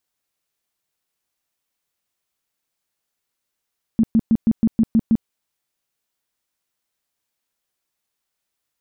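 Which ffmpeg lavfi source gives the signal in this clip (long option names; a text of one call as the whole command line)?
ffmpeg -f lavfi -i "aevalsrc='0.282*sin(2*PI*225*mod(t,0.16))*lt(mod(t,0.16),10/225)':duration=1.28:sample_rate=44100" out.wav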